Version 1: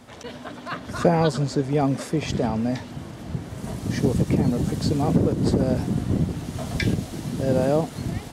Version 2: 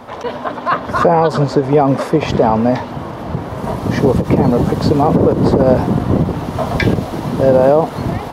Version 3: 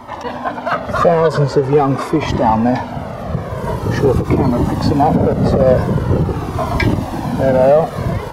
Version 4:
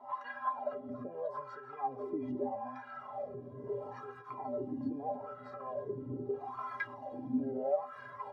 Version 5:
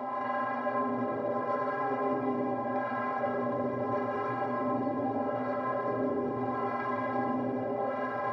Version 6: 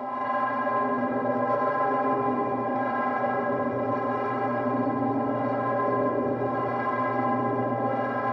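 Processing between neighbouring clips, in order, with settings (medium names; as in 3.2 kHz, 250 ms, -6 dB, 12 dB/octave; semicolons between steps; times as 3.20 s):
graphic EQ 500/1000/8000 Hz +6/+11/-10 dB; loudness maximiser +9 dB; endings held to a fixed fall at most 240 dB/s; trim -1 dB
peaking EQ 3.5 kHz -2.5 dB; in parallel at -7 dB: hard clipper -14 dBFS, distortion -7 dB; on the sum: Shepard-style flanger falling 0.44 Hz; trim +2 dB
compression 2.5:1, threshold -19 dBFS, peak gain reduction 9 dB; wah-wah 0.78 Hz 280–1500 Hz, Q 5.4; inharmonic resonator 120 Hz, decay 0.3 s, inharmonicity 0.03; trim +4 dB
spectral levelling over time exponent 0.4; peak limiter -28.5 dBFS, peak gain reduction 10.5 dB; gated-style reverb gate 450 ms flat, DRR -3 dB
in parallel at -11.5 dB: saturation -28.5 dBFS, distortion -14 dB; on the sum: feedback echo behind a low-pass 133 ms, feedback 74%, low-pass 2.9 kHz, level -4.5 dB; trim +1.5 dB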